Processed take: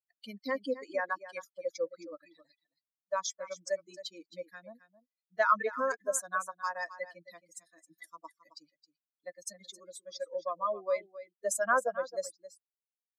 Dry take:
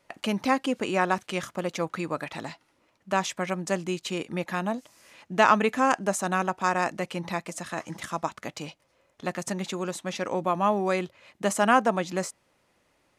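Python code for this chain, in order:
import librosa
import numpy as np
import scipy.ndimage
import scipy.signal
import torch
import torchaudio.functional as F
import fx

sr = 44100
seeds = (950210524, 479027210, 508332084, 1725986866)

p1 = fx.bin_expand(x, sr, power=3.0)
p2 = scipy.signal.sosfilt(scipy.signal.butter(4, 390.0, 'highpass', fs=sr, output='sos'), p1)
p3 = fx.high_shelf(p2, sr, hz=10000.0, db=-7.0)
p4 = fx.over_compress(p3, sr, threshold_db=-35.0, ratio=-1.0)
p5 = p3 + (p4 * 10.0 ** (-2.0 / 20.0))
p6 = fx.fixed_phaser(p5, sr, hz=550.0, stages=8)
y = p6 + 10.0 ** (-15.0 / 20.0) * np.pad(p6, (int(268 * sr / 1000.0), 0))[:len(p6)]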